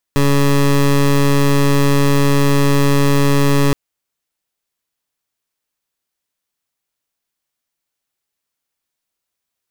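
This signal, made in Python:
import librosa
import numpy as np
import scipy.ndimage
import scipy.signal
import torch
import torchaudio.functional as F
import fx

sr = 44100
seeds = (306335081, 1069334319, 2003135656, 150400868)

y = fx.pulse(sr, length_s=3.57, hz=141.0, level_db=-12.0, duty_pct=19)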